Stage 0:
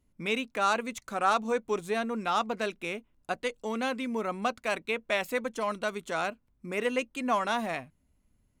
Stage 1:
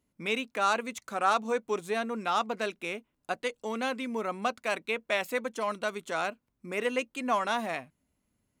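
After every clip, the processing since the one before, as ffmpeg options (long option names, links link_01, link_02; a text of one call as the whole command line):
ffmpeg -i in.wav -af "highpass=frequency=190:poles=1" out.wav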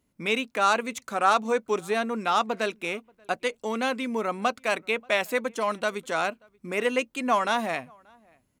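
ffmpeg -i in.wav -filter_complex "[0:a]asplit=2[link_01][link_02];[link_02]adelay=583.1,volume=-29dB,highshelf=frequency=4000:gain=-13.1[link_03];[link_01][link_03]amix=inputs=2:normalize=0,volume=4.5dB" out.wav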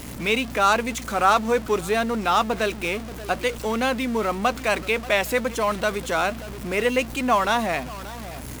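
ffmpeg -i in.wav -filter_complex "[0:a]aeval=exprs='val(0)+0.5*0.0211*sgn(val(0))':channel_layout=same,aeval=exprs='val(0)+0.00794*(sin(2*PI*60*n/s)+sin(2*PI*2*60*n/s)/2+sin(2*PI*3*60*n/s)/3+sin(2*PI*4*60*n/s)/4+sin(2*PI*5*60*n/s)/5)':channel_layout=same,asplit=2[link_01][link_02];[link_02]acrusher=bits=5:mix=0:aa=0.000001,volume=-9dB[link_03];[link_01][link_03]amix=inputs=2:normalize=0" out.wav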